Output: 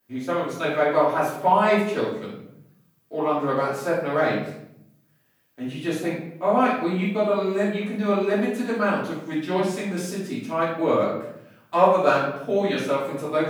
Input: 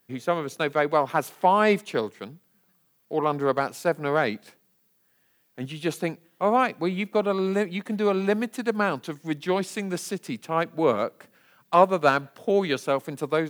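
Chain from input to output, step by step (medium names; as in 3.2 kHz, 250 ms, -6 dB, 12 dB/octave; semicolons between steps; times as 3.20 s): simulated room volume 170 m³, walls mixed, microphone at 2.8 m; trim -8.5 dB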